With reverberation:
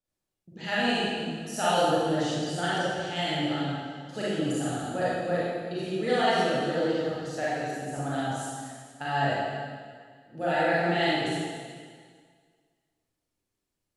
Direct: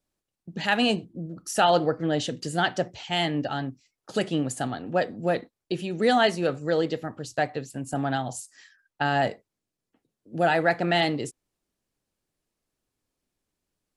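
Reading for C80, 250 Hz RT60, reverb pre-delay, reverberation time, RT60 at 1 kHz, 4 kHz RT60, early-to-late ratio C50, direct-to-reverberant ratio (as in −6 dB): −1.5 dB, 1.9 s, 32 ms, 1.8 s, 1.8 s, 1.8 s, −5.0 dB, −9.5 dB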